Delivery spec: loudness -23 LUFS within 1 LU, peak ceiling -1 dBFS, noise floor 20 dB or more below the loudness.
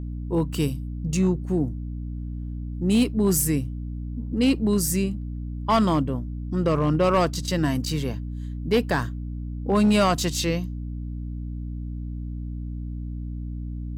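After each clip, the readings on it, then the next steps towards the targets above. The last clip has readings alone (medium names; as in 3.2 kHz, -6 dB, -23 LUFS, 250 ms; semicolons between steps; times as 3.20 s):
clipped samples 0.4%; clipping level -13.5 dBFS; hum 60 Hz; highest harmonic 300 Hz; hum level -29 dBFS; loudness -25.5 LUFS; peak level -13.5 dBFS; loudness target -23.0 LUFS
-> clip repair -13.5 dBFS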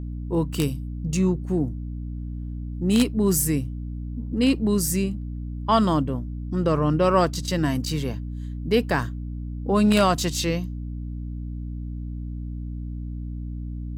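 clipped samples 0.0%; hum 60 Hz; highest harmonic 300 Hz; hum level -29 dBFS
-> hum notches 60/120/180/240/300 Hz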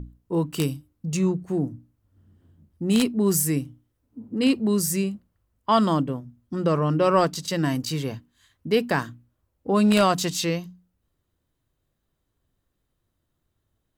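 hum not found; loudness -24.0 LUFS; peak level -5.0 dBFS; loudness target -23.0 LUFS
-> trim +1 dB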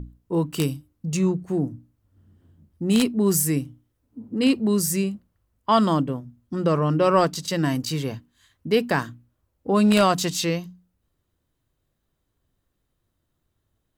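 loudness -23.0 LUFS; peak level -4.0 dBFS; noise floor -76 dBFS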